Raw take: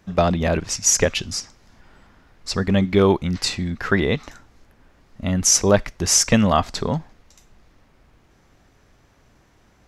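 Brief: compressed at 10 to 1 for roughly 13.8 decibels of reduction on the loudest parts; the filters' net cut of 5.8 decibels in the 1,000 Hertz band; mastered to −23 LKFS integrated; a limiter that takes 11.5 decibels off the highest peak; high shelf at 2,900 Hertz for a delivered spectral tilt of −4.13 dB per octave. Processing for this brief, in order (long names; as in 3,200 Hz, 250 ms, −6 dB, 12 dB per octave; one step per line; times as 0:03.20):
parametric band 1,000 Hz −8 dB
high-shelf EQ 2,900 Hz −3.5 dB
downward compressor 10 to 1, threshold −26 dBFS
level +12.5 dB
brickwall limiter −13 dBFS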